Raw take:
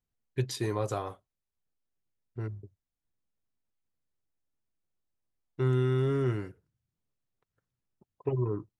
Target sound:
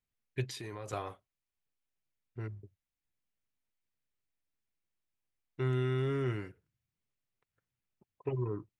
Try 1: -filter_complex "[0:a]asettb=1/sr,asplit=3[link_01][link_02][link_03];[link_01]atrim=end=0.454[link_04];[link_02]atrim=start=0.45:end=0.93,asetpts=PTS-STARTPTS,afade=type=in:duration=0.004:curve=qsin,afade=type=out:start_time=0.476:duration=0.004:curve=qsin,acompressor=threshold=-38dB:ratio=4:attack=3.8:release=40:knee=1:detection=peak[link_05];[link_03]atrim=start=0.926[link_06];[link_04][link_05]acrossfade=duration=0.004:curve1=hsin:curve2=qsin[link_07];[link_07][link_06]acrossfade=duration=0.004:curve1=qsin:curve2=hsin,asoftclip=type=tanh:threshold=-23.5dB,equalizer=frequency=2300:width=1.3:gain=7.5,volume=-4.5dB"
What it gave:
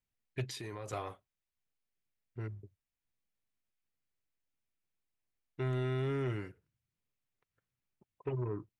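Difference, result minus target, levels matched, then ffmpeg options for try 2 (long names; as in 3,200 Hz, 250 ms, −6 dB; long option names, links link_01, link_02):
soft clipping: distortion +15 dB
-filter_complex "[0:a]asettb=1/sr,asplit=3[link_01][link_02][link_03];[link_01]atrim=end=0.454[link_04];[link_02]atrim=start=0.45:end=0.93,asetpts=PTS-STARTPTS,afade=type=in:duration=0.004:curve=qsin,afade=type=out:start_time=0.476:duration=0.004:curve=qsin,acompressor=threshold=-38dB:ratio=4:attack=3.8:release=40:knee=1:detection=peak[link_05];[link_03]atrim=start=0.926[link_06];[link_04][link_05]acrossfade=duration=0.004:curve1=hsin:curve2=qsin[link_07];[link_07][link_06]acrossfade=duration=0.004:curve1=qsin:curve2=hsin,asoftclip=type=tanh:threshold=-14dB,equalizer=frequency=2300:width=1.3:gain=7.5,volume=-4.5dB"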